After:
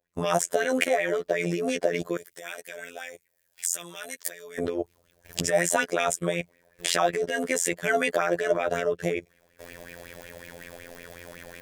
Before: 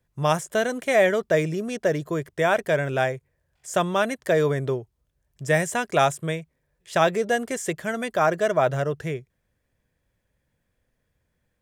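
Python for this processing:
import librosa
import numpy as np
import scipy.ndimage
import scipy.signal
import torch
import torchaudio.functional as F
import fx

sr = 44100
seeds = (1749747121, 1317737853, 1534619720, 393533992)

y = fx.recorder_agc(x, sr, target_db=-13.5, rise_db_per_s=45.0, max_gain_db=30)
y = fx.curve_eq(y, sr, hz=(100.0, 460.0, 890.0, 4700.0), db=(0, 15, 5, 13))
y = fx.level_steps(y, sr, step_db=20)
y = fx.robotise(y, sr, hz=86.3)
y = fx.pre_emphasis(y, sr, coefficient=0.9, at=(2.17, 4.58))
y = fx.bell_lfo(y, sr, hz=5.4, low_hz=650.0, high_hz=2500.0, db=13)
y = y * librosa.db_to_amplitude(-5.0)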